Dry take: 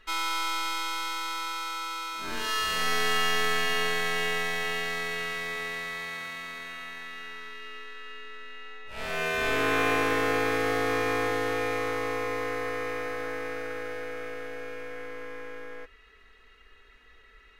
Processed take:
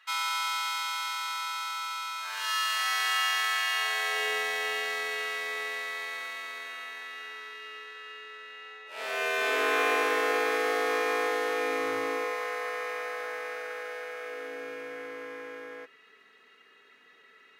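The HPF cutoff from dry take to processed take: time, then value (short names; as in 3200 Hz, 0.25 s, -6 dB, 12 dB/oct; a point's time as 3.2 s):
HPF 24 dB/oct
3.73 s 820 Hz
4.33 s 360 Hz
11.55 s 360 Hz
11.97 s 140 Hz
12.36 s 490 Hz
14.2 s 490 Hz
14.69 s 170 Hz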